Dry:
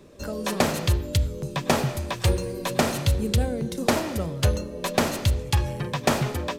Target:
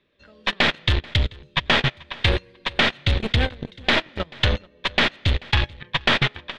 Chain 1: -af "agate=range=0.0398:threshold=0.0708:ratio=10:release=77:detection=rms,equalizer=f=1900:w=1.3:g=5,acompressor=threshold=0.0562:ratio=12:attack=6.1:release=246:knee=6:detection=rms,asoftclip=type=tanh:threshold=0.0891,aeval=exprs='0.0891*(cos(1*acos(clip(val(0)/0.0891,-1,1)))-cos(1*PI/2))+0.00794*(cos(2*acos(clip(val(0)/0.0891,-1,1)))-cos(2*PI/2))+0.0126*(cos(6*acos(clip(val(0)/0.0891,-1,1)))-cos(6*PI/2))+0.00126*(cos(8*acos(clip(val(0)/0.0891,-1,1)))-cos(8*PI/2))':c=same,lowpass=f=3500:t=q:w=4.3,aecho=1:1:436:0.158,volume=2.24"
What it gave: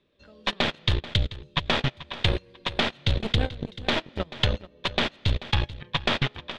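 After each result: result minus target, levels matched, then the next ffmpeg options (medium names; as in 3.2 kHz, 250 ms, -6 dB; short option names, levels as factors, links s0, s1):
compression: peak gain reduction +6 dB; echo-to-direct +7.5 dB; 2 kHz band -3.0 dB
-af "agate=range=0.0398:threshold=0.0708:ratio=10:release=77:detection=rms,equalizer=f=1900:w=1.3:g=5,acompressor=threshold=0.15:ratio=12:attack=6.1:release=246:knee=6:detection=rms,asoftclip=type=tanh:threshold=0.0891,aeval=exprs='0.0891*(cos(1*acos(clip(val(0)/0.0891,-1,1)))-cos(1*PI/2))+0.00794*(cos(2*acos(clip(val(0)/0.0891,-1,1)))-cos(2*PI/2))+0.0126*(cos(6*acos(clip(val(0)/0.0891,-1,1)))-cos(6*PI/2))+0.00126*(cos(8*acos(clip(val(0)/0.0891,-1,1)))-cos(8*PI/2))':c=same,lowpass=f=3500:t=q:w=4.3,aecho=1:1:436:0.158,volume=2.24"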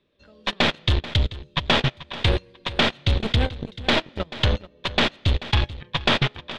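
echo-to-direct +7.5 dB; 2 kHz band -3.0 dB
-af "agate=range=0.0398:threshold=0.0708:ratio=10:release=77:detection=rms,equalizer=f=1900:w=1.3:g=5,acompressor=threshold=0.15:ratio=12:attack=6.1:release=246:knee=6:detection=rms,asoftclip=type=tanh:threshold=0.0891,aeval=exprs='0.0891*(cos(1*acos(clip(val(0)/0.0891,-1,1)))-cos(1*PI/2))+0.00794*(cos(2*acos(clip(val(0)/0.0891,-1,1)))-cos(2*PI/2))+0.0126*(cos(6*acos(clip(val(0)/0.0891,-1,1)))-cos(6*PI/2))+0.00126*(cos(8*acos(clip(val(0)/0.0891,-1,1)))-cos(8*PI/2))':c=same,lowpass=f=3500:t=q:w=4.3,aecho=1:1:436:0.0668,volume=2.24"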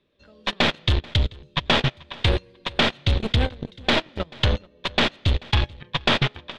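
2 kHz band -3.0 dB
-af "agate=range=0.0398:threshold=0.0708:ratio=10:release=77:detection=rms,equalizer=f=1900:w=1.3:g=12.5,acompressor=threshold=0.15:ratio=12:attack=6.1:release=246:knee=6:detection=rms,asoftclip=type=tanh:threshold=0.0891,aeval=exprs='0.0891*(cos(1*acos(clip(val(0)/0.0891,-1,1)))-cos(1*PI/2))+0.00794*(cos(2*acos(clip(val(0)/0.0891,-1,1)))-cos(2*PI/2))+0.0126*(cos(6*acos(clip(val(0)/0.0891,-1,1)))-cos(6*PI/2))+0.00126*(cos(8*acos(clip(val(0)/0.0891,-1,1)))-cos(8*PI/2))':c=same,lowpass=f=3500:t=q:w=4.3,aecho=1:1:436:0.0668,volume=2.24"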